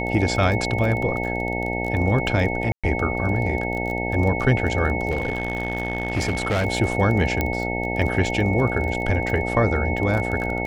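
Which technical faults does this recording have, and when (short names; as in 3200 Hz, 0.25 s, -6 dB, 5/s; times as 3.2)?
buzz 60 Hz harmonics 15 -27 dBFS
crackle 25/s -27 dBFS
tone 2200 Hz -28 dBFS
2.72–2.84 gap 0.116 s
5.1–6.66 clipped -18.5 dBFS
7.41 pop -8 dBFS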